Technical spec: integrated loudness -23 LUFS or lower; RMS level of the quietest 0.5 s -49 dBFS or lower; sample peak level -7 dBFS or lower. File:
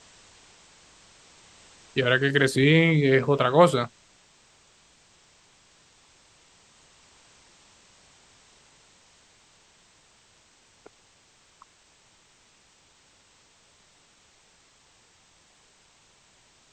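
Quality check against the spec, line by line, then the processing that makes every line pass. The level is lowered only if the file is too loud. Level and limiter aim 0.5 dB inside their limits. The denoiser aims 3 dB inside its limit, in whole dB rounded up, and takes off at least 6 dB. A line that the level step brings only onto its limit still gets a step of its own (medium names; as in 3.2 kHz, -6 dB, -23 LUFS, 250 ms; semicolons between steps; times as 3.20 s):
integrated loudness -21.0 LUFS: fail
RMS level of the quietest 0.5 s -60 dBFS: pass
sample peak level -4.0 dBFS: fail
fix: trim -2.5 dB; peak limiter -7.5 dBFS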